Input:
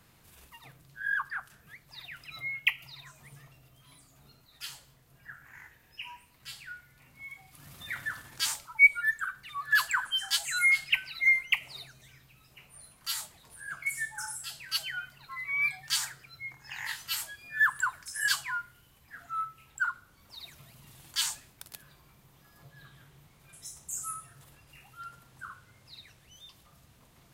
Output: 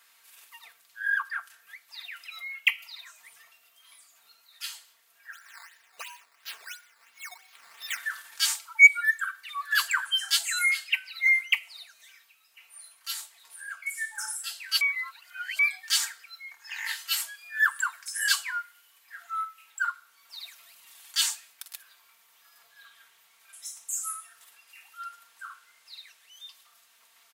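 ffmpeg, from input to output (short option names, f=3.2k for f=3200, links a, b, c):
-filter_complex "[0:a]asplit=3[a][b][c];[a]afade=t=out:st=5.32:d=0.02[d];[b]acrusher=samples=10:mix=1:aa=0.000001:lfo=1:lforange=10:lforate=2.9,afade=t=in:st=5.32:d=0.02,afade=t=out:st=7.96:d=0.02[e];[c]afade=t=in:st=7.96:d=0.02[f];[d][e][f]amix=inputs=3:normalize=0,asettb=1/sr,asplit=3[g][h][i];[g]atrim=end=10.674[j];[h]atrim=start=10.67:end=14.19,asetpts=PTS-STARTPTS,afade=t=in:d=0.004:c=qsin,afade=t=out:st=3.516:d=0.004:c=qsin,tremolo=f=1.4:d=0.47[k];[i]atrim=start=14.186[l];[j][k]acrossfade=d=0.004:c1=hsin:c2=qsin[m];[m][l]acrossfade=d=0.004:c1=qsin:c2=hsin,asplit=3[n][o][p];[n]atrim=end=14.812[q];[o]atrim=start=14.808:end=15.592,asetpts=PTS-STARTPTS,areverse[r];[p]atrim=start=15.588[s];[q][r]acrossfade=d=0.004:c1=hsin:c2=hsin[t];[t][s]acrossfade=d=0.004:c1=hsin:c2=hsin,highpass=1.3k,aecho=1:1:4.4:0.54,acontrast=54,volume=-2.5dB"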